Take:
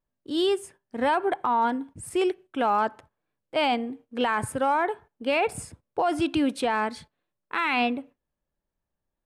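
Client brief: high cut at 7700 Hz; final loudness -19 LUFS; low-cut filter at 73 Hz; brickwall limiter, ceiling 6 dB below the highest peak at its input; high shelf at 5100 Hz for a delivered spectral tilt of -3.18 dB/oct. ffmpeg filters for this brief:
-af "highpass=73,lowpass=7.7k,highshelf=f=5.1k:g=-7.5,volume=12dB,alimiter=limit=-8.5dB:level=0:latency=1"

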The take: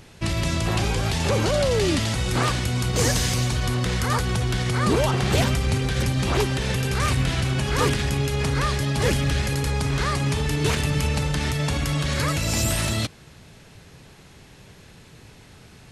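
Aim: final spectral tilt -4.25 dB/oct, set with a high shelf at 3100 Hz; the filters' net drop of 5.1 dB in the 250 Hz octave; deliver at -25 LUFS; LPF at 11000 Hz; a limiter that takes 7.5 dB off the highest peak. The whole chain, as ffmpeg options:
-af "lowpass=11k,equalizer=f=250:t=o:g=-8.5,highshelf=f=3.1k:g=8.5,volume=-1.5dB,alimiter=limit=-15.5dB:level=0:latency=1"

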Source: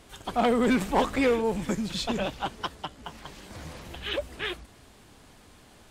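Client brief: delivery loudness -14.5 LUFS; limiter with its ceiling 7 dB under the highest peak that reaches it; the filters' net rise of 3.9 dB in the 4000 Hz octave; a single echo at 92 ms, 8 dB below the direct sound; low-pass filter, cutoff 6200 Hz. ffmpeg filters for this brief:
-af "lowpass=6.2k,equalizer=f=4k:t=o:g=5.5,alimiter=limit=-21dB:level=0:latency=1,aecho=1:1:92:0.398,volume=17dB"

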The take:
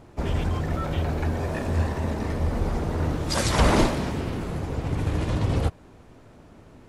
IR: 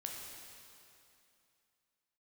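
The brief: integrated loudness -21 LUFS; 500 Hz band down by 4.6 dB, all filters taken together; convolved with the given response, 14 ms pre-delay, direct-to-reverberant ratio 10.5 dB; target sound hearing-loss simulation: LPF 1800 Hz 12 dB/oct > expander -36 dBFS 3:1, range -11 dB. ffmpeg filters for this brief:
-filter_complex "[0:a]equalizer=f=500:t=o:g=-6,asplit=2[a][b];[1:a]atrim=start_sample=2205,adelay=14[c];[b][c]afir=irnorm=-1:irlink=0,volume=-9.5dB[d];[a][d]amix=inputs=2:normalize=0,lowpass=1.8k,agate=range=-11dB:threshold=-36dB:ratio=3,volume=6dB"

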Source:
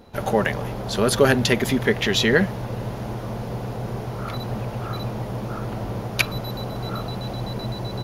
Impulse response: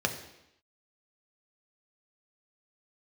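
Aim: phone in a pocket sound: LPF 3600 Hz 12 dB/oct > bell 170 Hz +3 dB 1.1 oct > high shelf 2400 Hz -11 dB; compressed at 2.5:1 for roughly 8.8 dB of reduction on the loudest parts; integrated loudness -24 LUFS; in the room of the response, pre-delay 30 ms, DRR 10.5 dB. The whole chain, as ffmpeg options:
-filter_complex "[0:a]acompressor=threshold=-25dB:ratio=2.5,asplit=2[a][b];[1:a]atrim=start_sample=2205,adelay=30[c];[b][c]afir=irnorm=-1:irlink=0,volume=-19dB[d];[a][d]amix=inputs=2:normalize=0,lowpass=3.6k,equalizer=f=170:t=o:w=1.1:g=3,highshelf=f=2.4k:g=-11,volume=4dB"

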